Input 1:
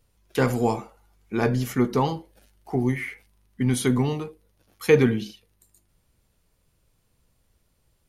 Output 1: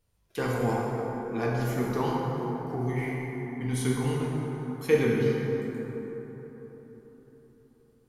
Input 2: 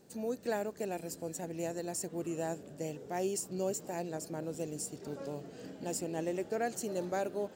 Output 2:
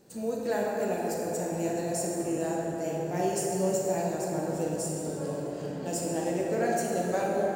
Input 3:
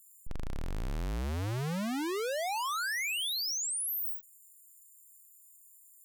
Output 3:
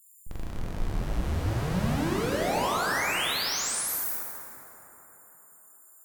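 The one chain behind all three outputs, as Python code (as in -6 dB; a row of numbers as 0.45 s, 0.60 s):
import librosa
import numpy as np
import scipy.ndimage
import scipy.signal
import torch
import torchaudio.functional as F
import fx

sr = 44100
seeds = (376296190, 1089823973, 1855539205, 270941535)

y = fx.rev_plate(x, sr, seeds[0], rt60_s=4.3, hf_ratio=0.4, predelay_ms=0, drr_db=-4.0)
y = y * 10.0 ** (-30 / 20.0) / np.sqrt(np.mean(np.square(y)))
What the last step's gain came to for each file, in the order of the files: -9.0 dB, +2.0 dB, 0.0 dB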